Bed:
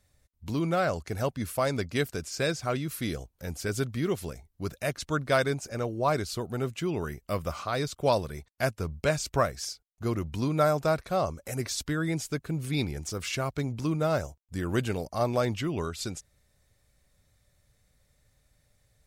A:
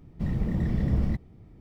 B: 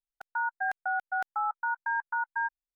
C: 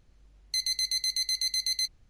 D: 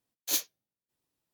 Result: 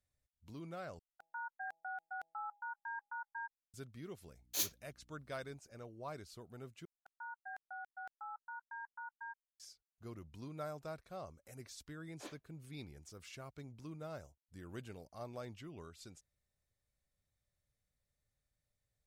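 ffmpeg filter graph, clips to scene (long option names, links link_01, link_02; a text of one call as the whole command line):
ffmpeg -i bed.wav -i cue0.wav -i cue1.wav -i cue2.wav -i cue3.wav -filter_complex "[2:a]asplit=2[link_01][link_02];[4:a]asplit=2[link_03][link_04];[0:a]volume=-20dB[link_05];[link_01]bandreject=frequency=164.4:width_type=h:width=4,bandreject=frequency=328.8:width_type=h:width=4,bandreject=frequency=493.2:width_type=h:width=4,bandreject=frequency=657.6:width_type=h:width=4,bandreject=frequency=822:width_type=h:width=4[link_06];[link_03]aeval=exprs='val(0)+0.000708*(sin(2*PI*60*n/s)+sin(2*PI*2*60*n/s)/2+sin(2*PI*3*60*n/s)/3+sin(2*PI*4*60*n/s)/4+sin(2*PI*5*60*n/s)/5)':channel_layout=same[link_07];[link_04]lowpass=1400[link_08];[link_05]asplit=3[link_09][link_10][link_11];[link_09]atrim=end=0.994[link_12];[link_06]atrim=end=2.75,asetpts=PTS-STARTPTS,volume=-14dB[link_13];[link_10]atrim=start=3.736:end=6.854[link_14];[link_02]atrim=end=2.75,asetpts=PTS-STARTPTS,volume=-17.5dB[link_15];[link_11]atrim=start=9.596[link_16];[link_07]atrim=end=1.33,asetpts=PTS-STARTPTS,volume=-7dB,afade=type=in:duration=0.004:curve=hsin,afade=type=out:start_time=1.326:duration=0.004:curve=hsin,adelay=4260[link_17];[link_08]atrim=end=1.33,asetpts=PTS-STARTPTS,volume=-7dB,afade=type=in:duration=0.004:curve=hsin,afade=type=out:start_time=1.326:duration=0.004:curve=hsin,adelay=11920[link_18];[link_12][link_13]acrossfade=duration=0.004:curve1=hsin:curve2=hsin[link_19];[link_19][link_14]acrossfade=duration=0.004:curve1=hsin:curve2=hsin[link_20];[link_20][link_15]acrossfade=duration=0.004:curve1=hsin:curve2=hsin[link_21];[link_21][link_16]acrossfade=duration=0.004:curve1=hsin:curve2=hsin[link_22];[link_22][link_17][link_18]amix=inputs=3:normalize=0" out.wav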